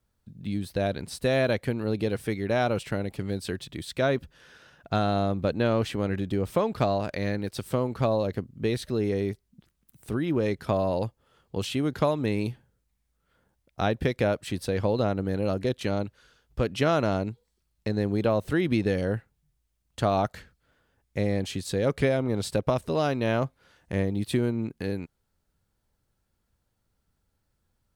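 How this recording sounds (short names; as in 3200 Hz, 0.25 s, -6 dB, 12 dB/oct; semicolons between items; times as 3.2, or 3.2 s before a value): noise floor -76 dBFS; spectral tilt -6.0 dB/oct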